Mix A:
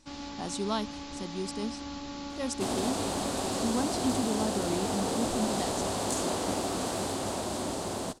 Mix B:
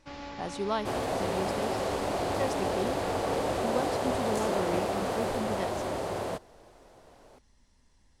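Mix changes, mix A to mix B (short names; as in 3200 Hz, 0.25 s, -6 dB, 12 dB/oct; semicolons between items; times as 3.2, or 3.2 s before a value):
second sound: entry -1.75 s; master: add graphic EQ 125/250/500/2000/4000/8000 Hz +3/-7/+6/+5/-4/-10 dB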